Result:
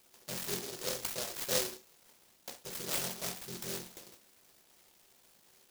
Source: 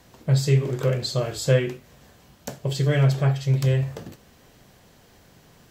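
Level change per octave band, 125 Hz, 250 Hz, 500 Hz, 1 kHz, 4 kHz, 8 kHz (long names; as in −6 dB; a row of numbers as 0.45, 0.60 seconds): −32.0, −19.5, −16.0, −9.5, −5.5, 0.0 decibels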